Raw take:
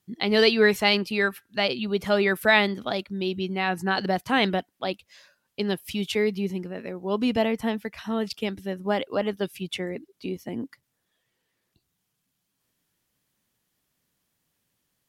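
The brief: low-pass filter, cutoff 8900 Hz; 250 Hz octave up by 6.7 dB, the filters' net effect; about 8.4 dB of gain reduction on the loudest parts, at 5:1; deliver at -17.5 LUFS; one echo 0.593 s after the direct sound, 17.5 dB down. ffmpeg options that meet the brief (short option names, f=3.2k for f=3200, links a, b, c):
-af "lowpass=8.9k,equalizer=f=250:t=o:g=8.5,acompressor=threshold=-21dB:ratio=5,aecho=1:1:593:0.133,volume=9.5dB"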